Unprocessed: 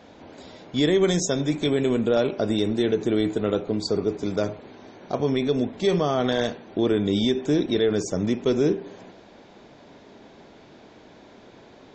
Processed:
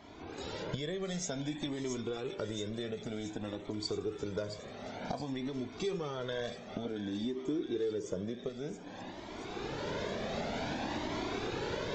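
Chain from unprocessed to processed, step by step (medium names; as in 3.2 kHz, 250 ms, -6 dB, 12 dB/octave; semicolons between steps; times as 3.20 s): recorder AGC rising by 16 dB/s; 6.85–8.49 s: peaking EQ 350 Hz +10 dB 2.1 oct; compression 10:1, threshold -28 dBFS, peak gain reduction 19.5 dB; on a send: feedback echo behind a high-pass 674 ms, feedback 65%, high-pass 1.4 kHz, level -7.5 dB; on the sum: Shepard-style flanger rising 0.54 Hz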